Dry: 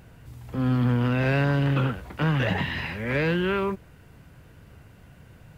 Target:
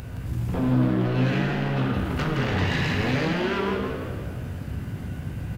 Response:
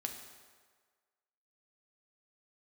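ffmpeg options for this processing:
-filter_complex "[0:a]acrossover=split=910[a][b];[a]aeval=exprs='clip(val(0),-1,0.0422)':c=same[c];[c][b]amix=inputs=2:normalize=0,acompressor=threshold=-31dB:ratio=6,equalizer=f=87:t=o:w=1.8:g=11.5,bandreject=f=50:t=h:w=6,bandreject=f=100:t=h:w=6,bandreject=f=150:t=h:w=6,bandreject=f=200:t=h:w=6,asplit=2[d][e];[e]adelay=19,volume=-6.5dB[f];[d][f]amix=inputs=2:normalize=0,aeval=exprs='0.119*sin(PI/2*2.82*val(0)/0.119)':c=same[g];[1:a]atrim=start_sample=2205[h];[g][h]afir=irnorm=-1:irlink=0,acompressor=mode=upward:threshold=-37dB:ratio=2.5,asplit=7[i][j][k][l][m][n][o];[j]adelay=168,afreqshift=61,volume=-5.5dB[p];[k]adelay=336,afreqshift=122,volume=-12.2dB[q];[l]adelay=504,afreqshift=183,volume=-19dB[r];[m]adelay=672,afreqshift=244,volume=-25.7dB[s];[n]adelay=840,afreqshift=305,volume=-32.5dB[t];[o]adelay=1008,afreqshift=366,volume=-39.2dB[u];[i][p][q][r][s][t][u]amix=inputs=7:normalize=0,volume=-3dB"

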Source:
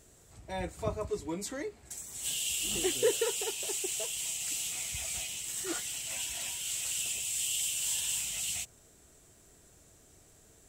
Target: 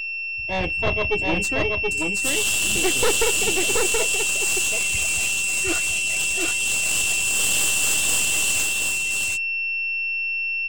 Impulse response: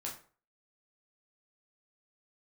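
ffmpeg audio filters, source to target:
-af "afftdn=nr=33:nf=-43,agate=range=-33dB:threshold=-48dB:ratio=3:detection=peak,aeval=exprs='val(0)+0.0141*sin(2*PI*2700*n/s)':c=same,aeval=exprs='0.158*(cos(1*acos(clip(val(0)/0.158,-1,1)))-cos(1*PI/2))+0.0794*(cos(5*acos(clip(val(0)/0.158,-1,1)))-cos(5*PI/2))+0.0708*(cos(6*acos(clip(val(0)/0.158,-1,1)))-cos(6*PI/2))':c=same,aecho=1:1:727:0.708"

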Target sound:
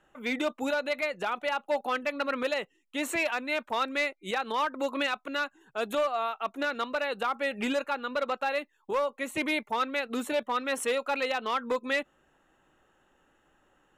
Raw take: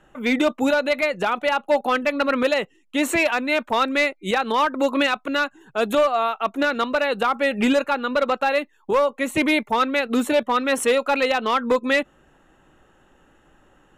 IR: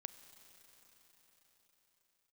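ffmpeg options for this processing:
-af "lowshelf=f=310:g=-7,volume=-8dB"

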